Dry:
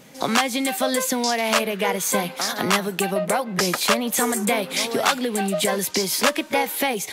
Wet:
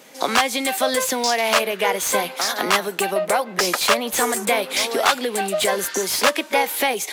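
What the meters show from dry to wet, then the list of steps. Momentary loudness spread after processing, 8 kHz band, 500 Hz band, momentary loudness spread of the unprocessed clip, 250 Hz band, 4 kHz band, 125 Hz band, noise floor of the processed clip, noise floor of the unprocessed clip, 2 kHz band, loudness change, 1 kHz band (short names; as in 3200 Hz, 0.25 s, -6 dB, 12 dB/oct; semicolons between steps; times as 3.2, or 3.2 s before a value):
3 LU, +1.5 dB, +2.0 dB, 3 LU, -4.5 dB, +2.5 dB, -8.0 dB, -37 dBFS, -38 dBFS, +2.5 dB, +1.5 dB, +3.0 dB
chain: spectral repair 5.81–6.04, 1100–5600 Hz before; HPF 350 Hz 12 dB/oct; slew limiter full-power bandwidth 540 Hz; gain +3 dB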